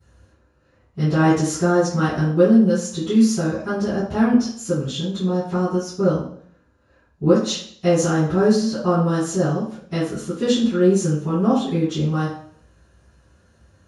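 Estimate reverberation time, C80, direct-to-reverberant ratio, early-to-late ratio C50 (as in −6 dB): 0.60 s, 7.5 dB, −19.5 dB, 2.5 dB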